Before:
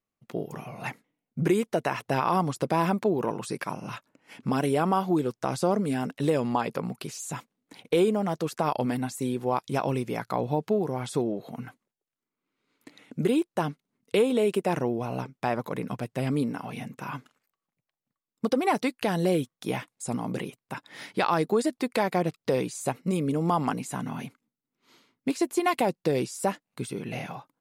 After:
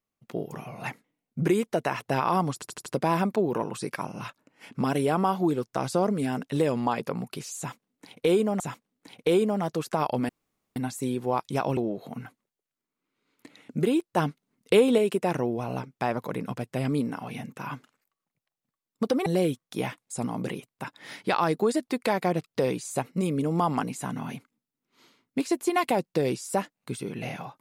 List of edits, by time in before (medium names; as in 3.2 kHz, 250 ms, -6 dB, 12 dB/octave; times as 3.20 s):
2.54 s: stutter 0.08 s, 5 plays
7.26–8.28 s: loop, 2 plays
8.95 s: insert room tone 0.47 s
9.96–11.19 s: delete
13.59–14.40 s: gain +3.5 dB
18.68–19.16 s: delete